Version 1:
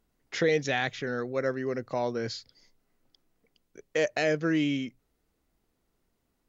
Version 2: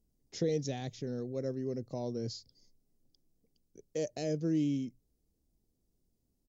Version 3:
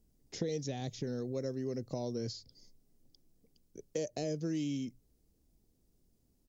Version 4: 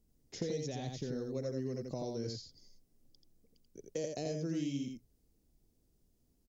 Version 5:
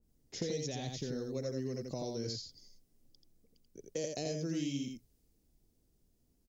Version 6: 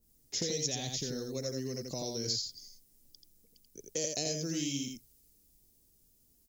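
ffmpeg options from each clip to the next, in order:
-af "firequalizer=gain_entry='entry(110,0);entry(1400,-26);entry(5100,-4)':delay=0.05:min_phase=1"
-filter_complex "[0:a]acrossover=split=970|3300[a][b][c];[a]acompressor=threshold=-40dB:ratio=4[d];[b]acompressor=threshold=-60dB:ratio=4[e];[c]acompressor=threshold=-52dB:ratio=4[f];[d][e][f]amix=inputs=3:normalize=0,volume=5.5dB"
-af "aecho=1:1:85:0.631,volume=-2.5dB"
-af "adynamicequalizer=threshold=0.00112:dfrequency=1900:dqfactor=0.7:tfrequency=1900:tqfactor=0.7:attack=5:release=100:ratio=0.375:range=2.5:mode=boostabove:tftype=highshelf"
-af "crystalizer=i=3.5:c=0"

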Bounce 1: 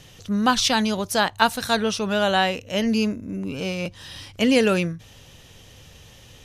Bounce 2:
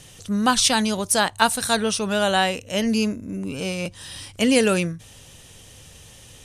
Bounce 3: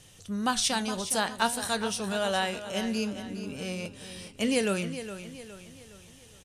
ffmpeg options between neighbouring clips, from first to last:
-af "equalizer=f=8.9k:t=o:w=0.57:g=14"
-filter_complex "[0:a]flanger=delay=9.6:depth=6.7:regen=77:speed=0.51:shape=triangular,asplit=2[a][b];[b]aecho=0:1:414|828|1242|1656:0.266|0.117|0.0515|0.0227[c];[a][c]amix=inputs=2:normalize=0,volume=-4dB"

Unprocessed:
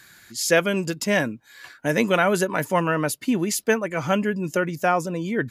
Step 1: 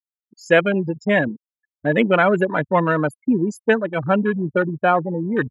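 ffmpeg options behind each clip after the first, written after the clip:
-af "afftfilt=real='re*gte(hypot(re,im),0.1)':imag='im*gte(hypot(re,im),0.1)':win_size=1024:overlap=0.75,afwtdn=0.0251,volume=4dB"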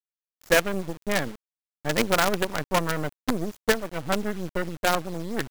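-af "acrusher=bits=3:dc=4:mix=0:aa=0.000001,volume=-6dB"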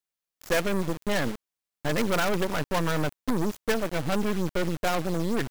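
-filter_complex "[0:a]asplit=2[a][b];[b]alimiter=limit=-15.5dB:level=0:latency=1:release=78,volume=-0.5dB[c];[a][c]amix=inputs=2:normalize=0,volume=18.5dB,asoftclip=hard,volume=-18.5dB"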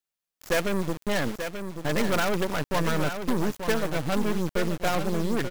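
-af "aecho=1:1:884:0.398"

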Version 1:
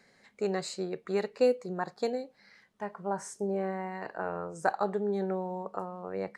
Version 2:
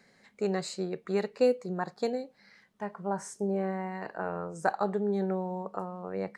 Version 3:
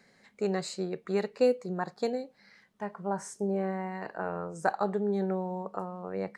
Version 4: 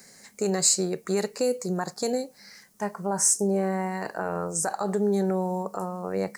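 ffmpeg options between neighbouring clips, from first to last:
-af "equalizer=f=190:t=o:w=0.84:g=3.5"
-af anull
-af "alimiter=limit=-23dB:level=0:latency=1:release=51,aexciter=amount=3.7:drive=9.3:freq=5k,volume=6.5dB"

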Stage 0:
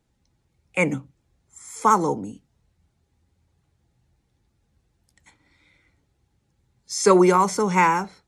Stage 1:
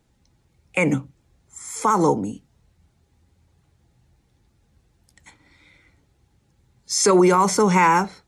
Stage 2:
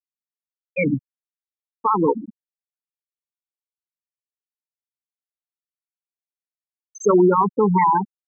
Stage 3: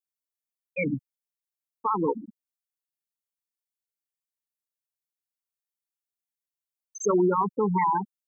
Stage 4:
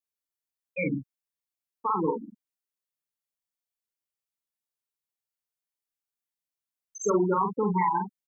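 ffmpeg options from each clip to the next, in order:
-af "alimiter=limit=-14dB:level=0:latency=1:release=52,volume=6dB"
-af "afftfilt=real='re*gte(hypot(re,im),0.501)':imag='im*gte(hypot(re,im),0.501)':win_size=1024:overlap=0.75,volume=1dB"
-af "highshelf=f=5.2k:g=12,volume=-7.5dB"
-filter_complex "[0:a]asplit=2[a][b];[b]adelay=43,volume=-5.5dB[c];[a][c]amix=inputs=2:normalize=0,volume=-2dB"

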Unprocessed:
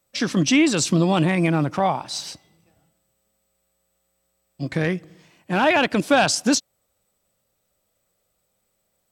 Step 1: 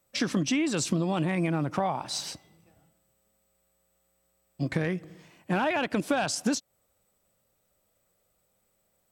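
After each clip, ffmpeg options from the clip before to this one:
-af "acompressor=threshold=-23dB:ratio=10,equalizer=f=4.5k:t=o:w=1.6:g=-3.5"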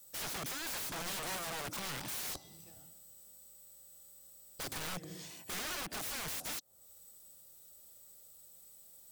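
-filter_complex "[0:a]acrossover=split=400|1400[a][b][c];[a]acompressor=threshold=-37dB:ratio=4[d];[b]acompressor=threshold=-42dB:ratio=4[e];[c]acompressor=threshold=-48dB:ratio=4[f];[d][e][f]amix=inputs=3:normalize=0,acrossover=split=1800[g][h];[h]aexciter=amount=3.4:drive=7.2:freq=3.3k[i];[g][i]amix=inputs=2:normalize=0,aeval=exprs='(mod(63.1*val(0)+1,2)-1)/63.1':c=same,volume=1dB"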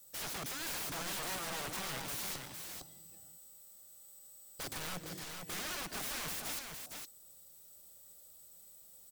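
-af "aecho=1:1:160|459:0.158|0.531,volume=-1dB"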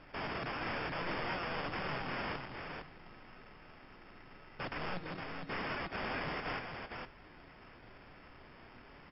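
-af "acrusher=samples=11:mix=1:aa=0.000001,flanger=delay=6.6:depth=2.1:regen=86:speed=1.1:shape=sinusoidal,volume=7dB" -ar 12000 -c:a libmp3lame -b:a 64k

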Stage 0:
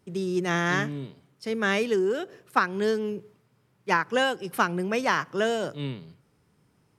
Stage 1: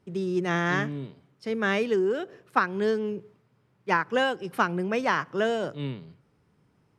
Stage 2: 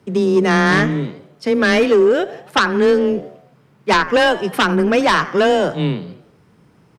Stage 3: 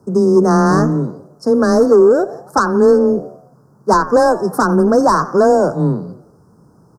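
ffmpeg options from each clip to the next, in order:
-af "lowpass=f=3.2k:p=1"
-filter_complex "[0:a]asplit=5[a][b][c][d][e];[b]adelay=89,afreqshift=74,volume=-19dB[f];[c]adelay=178,afreqshift=148,volume=-25.4dB[g];[d]adelay=267,afreqshift=222,volume=-31.8dB[h];[e]adelay=356,afreqshift=296,volume=-38.1dB[i];[a][f][g][h][i]amix=inputs=5:normalize=0,aeval=exprs='0.422*sin(PI/2*3.16*val(0)/0.422)':c=same,afreqshift=15"
-af "asuperstop=centerf=2700:order=8:qfactor=0.7,volume=3.5dB"

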